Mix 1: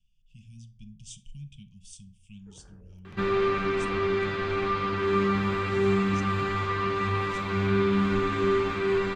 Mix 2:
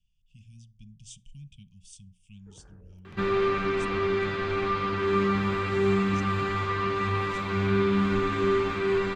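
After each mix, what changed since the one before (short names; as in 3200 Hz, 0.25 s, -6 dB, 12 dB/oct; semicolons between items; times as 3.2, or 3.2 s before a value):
speech: send -11.5 dB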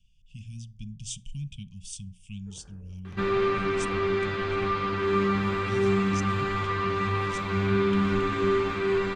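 speech +10.0 dB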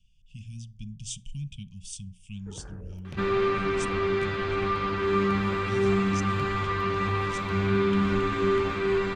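first sound +11.0 dB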